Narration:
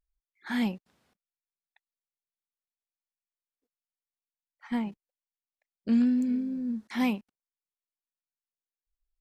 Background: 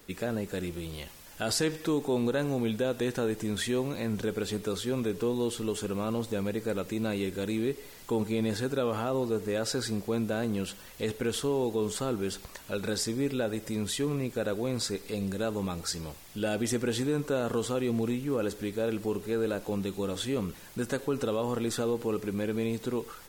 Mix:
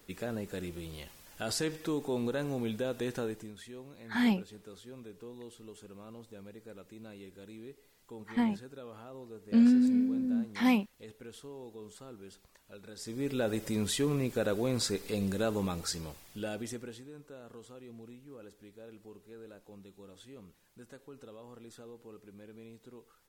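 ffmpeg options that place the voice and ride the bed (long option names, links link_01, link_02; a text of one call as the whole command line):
ffmpeg -i stem1.wav -i stem2.wav -filter_complex "[0:a]adelay=3650,volume=1dB[link_01];[1:a]volume=13dB,afade=type=out:start_time=3.2:duration=0.33:silence=0.223872,afade=type=in:start_time=12.96:duration=0.54:silence=0.125893,afade=type=out:start_time=15.53:duration=1.49:silence=0.0944061[link_02];[link_01][link_02]amix=inputs=2:normalize=0" out.wav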